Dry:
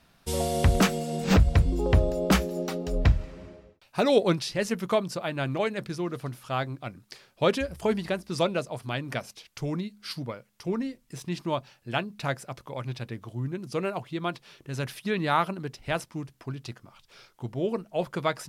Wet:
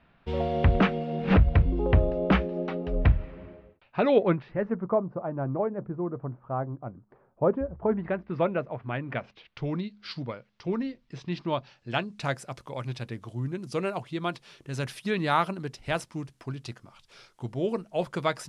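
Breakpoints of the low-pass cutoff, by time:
low-pass 24 dB/octave
4.09 s 2.9 kHz
4.90 s 1.1 kHz
7.76 s 1.1 kHz
8.17 s 2.2 kHz
8.88 s 2.2 kHz
9.85 s 4.5 kHz
11.56 s 4.5 kHz
12.38 s 11 kHz

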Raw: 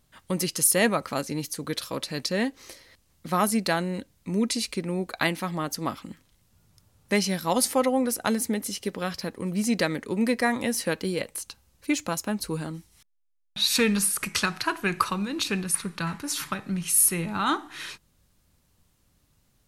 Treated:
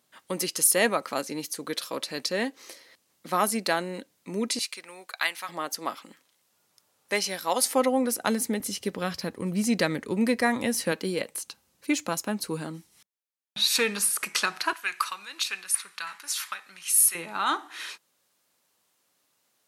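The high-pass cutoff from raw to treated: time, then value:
290 Hz
from 4.59 s 1.1 kHz
from 5.49 s 450 Hz
from 7.74 s 180 Hz
from 8.60 s 72 Hz
from 10.92 s 180 Hz
from 13.67 s 410 Hz
from 14.73 s 1.3 kHz
from 17.15 s 470 Hz

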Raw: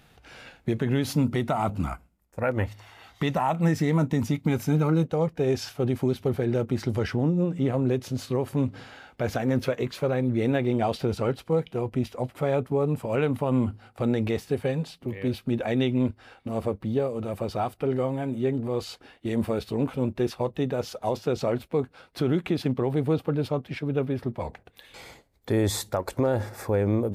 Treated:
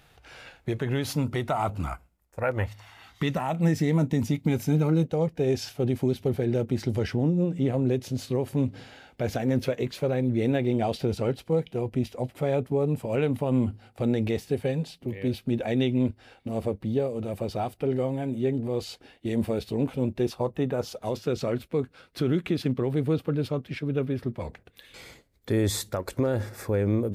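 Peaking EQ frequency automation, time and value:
peaking EQ -7.5 dB 0.89 oct
2.48 s 220 Hz
3.59 s 1.2 kHz
20.21 s 1.2 kHz
20.69 s 5.9 kHz
21.02 s 820 Hz

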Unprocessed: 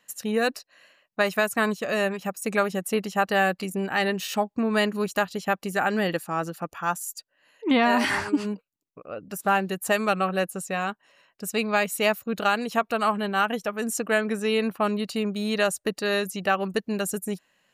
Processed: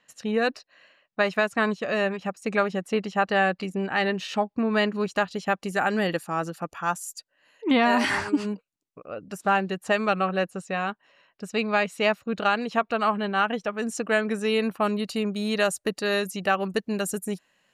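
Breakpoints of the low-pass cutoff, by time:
4.93 s 4.6 kHz
5.88 s 10 kHz
9.08 s 10 kHz
9.78 s 4.6 kHz
13.58 s 4.6 kHz
14.66 s 12 kHz

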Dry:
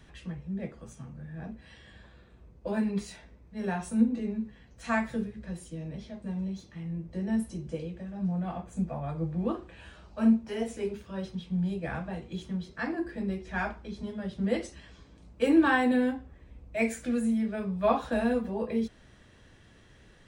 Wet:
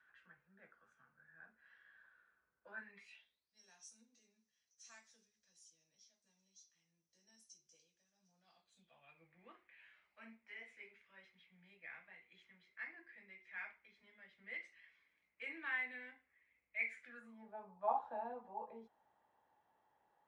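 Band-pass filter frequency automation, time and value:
band-pass filter, Q 9.4
2.79 s 1.5 kHz
3.62 s 5.9 kHz
8.34 s 5.9 kHz
9.32 s 2.1 kHz
17.03 s 2.1 kHz
17.43 s 850 Hz

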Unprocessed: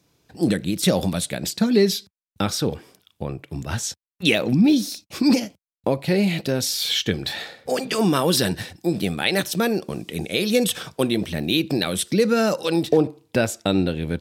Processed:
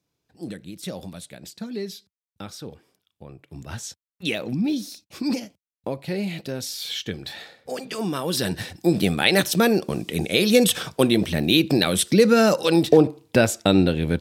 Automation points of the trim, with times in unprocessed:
3.23 s -14 dB
3.63 s -7.5 dB
8.23 s -7.5 dB
8.78 s +3 dB

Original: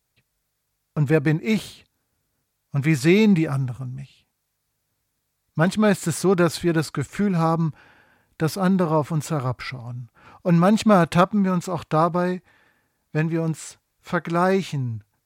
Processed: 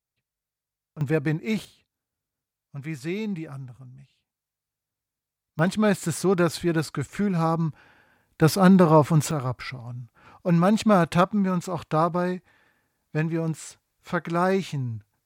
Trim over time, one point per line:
-15 dB
from 1.01 s -5 dB
from 1.65 s -13.5 dB
from 5.59 s -3 dB
from 8.42 s +4 dB
from 9.31 s -3 dB

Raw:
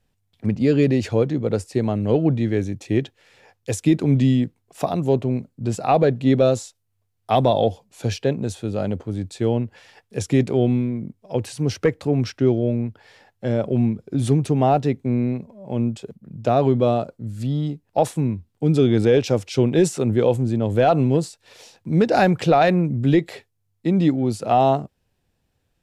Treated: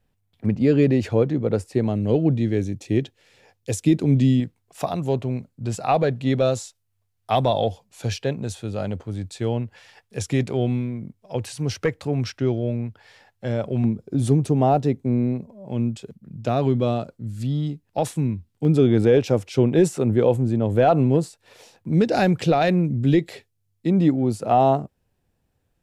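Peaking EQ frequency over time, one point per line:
peaking EQ -5.5 dB 2 oct
6.1 kHz
from 1.87 s 1.2 kHz
from 4.40 s 310 Hz
from 13.84 s 2.3 kHz
from 15.68 s 640 Hz
from 18.65 s 4.9 kHz
from 21.94 s 1 kHz
from 23.90 s 3.9 kHz

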